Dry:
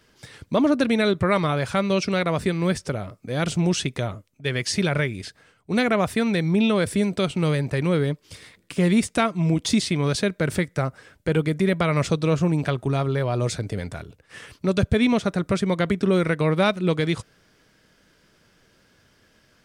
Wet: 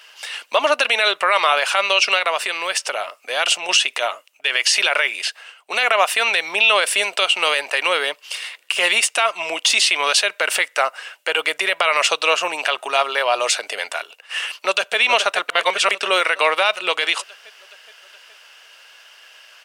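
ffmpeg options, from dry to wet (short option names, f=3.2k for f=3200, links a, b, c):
-filter_complex "[0:a]asettb=1/sr,asplit=3[a][b][c];[a]atrim=end=2.194[d];[b]atrim=start=2.19:end=3.69,asetpts=PTS-STARTPTS,afade=t=in:d=0.004:c=qsin,afade=t=out:st=1.496:d=0.004:c=qsin,acompressor=threshold=-23dB:ratio=6:attack=3.2:release=140:knee=1:detection=peak[e];[c]atrim=start=3.686[f];[d][e]acrossfade=d=0.004:c1=hsin:c2=qsin[g];[g][f]acrossfade=d=0.004:c1=qsin:c2=hsin,asplit=2[h][i];[i]afade=t=in:st=14.52:d=0.01,afade=t=out:st=14.98:d=0.01,aecho=0:1:420|840|1260|1680|2100|2520|2940|3360:0.298538|0.19405|0.126132|0.0819861|0.0532909|0.0346391|0.0225154|0.014635[j];[h][j]amix=inputs=2:normalize=0,asplit=3[k][l][m];[k]atrim=end=15.492[n];[l]atrim=start=15.488:end=15.912,asetpts=PTS-STARTPTS,areverse[o];[m]atrim=start=15.908[p];[n][o]acrossfade=d=0.004:c1=hsin:c2=hsin[q];[q][p]acrossfade=d=0.004:c1=hsin:c2=hsin,highpass=f=680:w=0.5412,highpass=f=680:w=1.3066,equalizer=f=2.8k:t=o:w=0.24:g=14.5,alimiter=level_in=17dB:limit=-1dB:release=50:level=0:latency=1,volume=-4dB"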